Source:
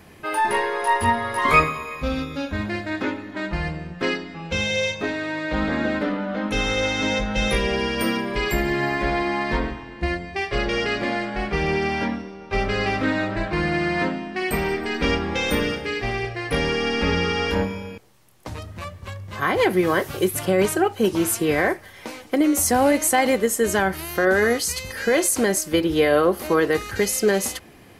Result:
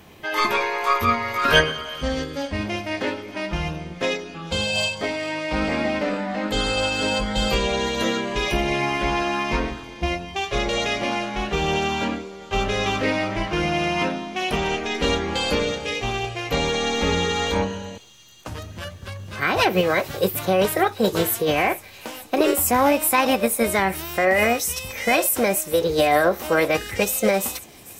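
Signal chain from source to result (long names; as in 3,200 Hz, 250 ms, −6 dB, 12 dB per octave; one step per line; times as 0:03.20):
formants moved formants +4 semitones
delay with a high-pass on its return 444 ms, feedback 68%, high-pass 4,600 Hz, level −15.5 dB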